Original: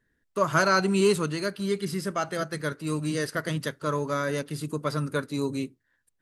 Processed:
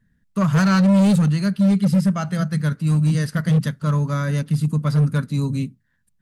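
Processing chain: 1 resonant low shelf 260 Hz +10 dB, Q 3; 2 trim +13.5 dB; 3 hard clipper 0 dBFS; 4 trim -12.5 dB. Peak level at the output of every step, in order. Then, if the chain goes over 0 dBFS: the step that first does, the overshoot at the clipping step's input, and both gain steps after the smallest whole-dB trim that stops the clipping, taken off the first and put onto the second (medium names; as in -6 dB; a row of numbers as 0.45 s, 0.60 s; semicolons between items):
-3.5 dBFS, +10.0 dBFS, 0.0 dBFS, -12.5 dBFS; step 2, 10.0 dB; step 2 +3.5 dB, step 4 -2.5 dB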